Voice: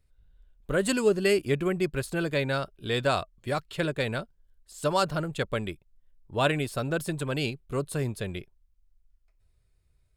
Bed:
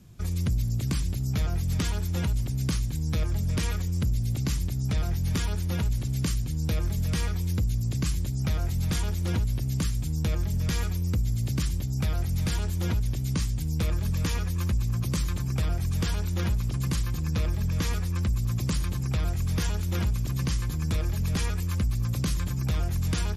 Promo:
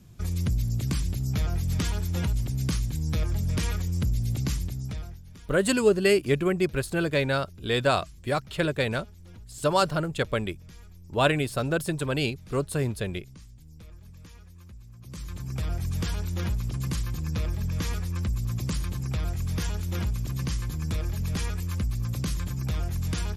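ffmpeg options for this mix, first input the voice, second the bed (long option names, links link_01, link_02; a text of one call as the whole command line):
ffmpeg -i stem1.wav -i stem2.wav -filter_complex "[0:a]adelay=4800,volume=2.5dB[link_01];[1:a]volume=19dB,afade=type=out:start_time=4.45:duration=0.76:silence=0.0891251,afade=type=in:start_time=14.99:duration=0.77:silence=0.112202[link_02];[link_01][link_02]amix=inputs=2:normalize=0" out.wav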